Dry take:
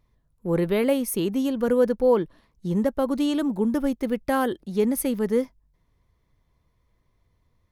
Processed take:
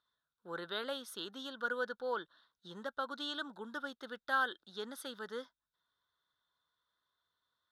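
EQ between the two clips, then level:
pair of resonant band-passes 2,300 Hz, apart 1.3 octaves
+4.5 dB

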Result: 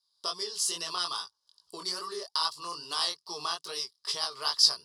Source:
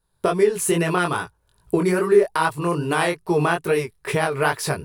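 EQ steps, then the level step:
pair of resonant band-passes 2,400 Hz, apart 2.1 octaves
high shelf with overshoot 2,000 Hz +13.5 dB, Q 3
0.0 dB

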